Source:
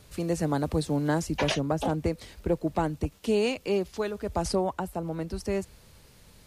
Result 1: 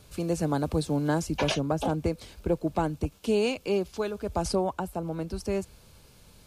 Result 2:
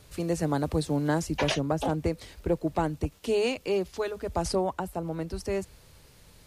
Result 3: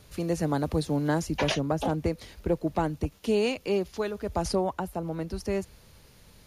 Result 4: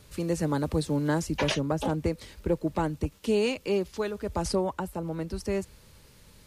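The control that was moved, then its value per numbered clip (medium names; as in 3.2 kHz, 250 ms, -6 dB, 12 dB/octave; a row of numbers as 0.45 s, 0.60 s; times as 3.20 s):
band-stop, frequency: 1.9 kHz, 210 Hz, 8 kHz, 710 Hz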